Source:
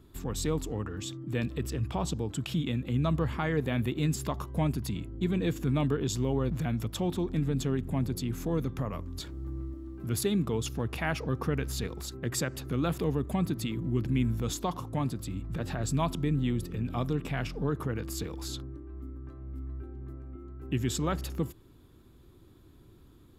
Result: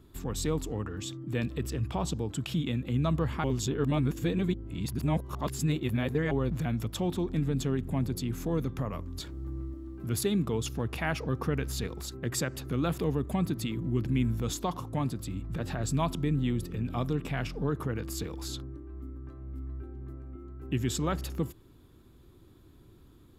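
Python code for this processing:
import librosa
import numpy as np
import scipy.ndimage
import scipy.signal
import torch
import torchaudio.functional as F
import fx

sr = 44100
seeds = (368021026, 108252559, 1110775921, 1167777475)

y = fx.edit(x, sr, fx.reverse_span(start_s=3.44, length_s=2.87), tone=tone)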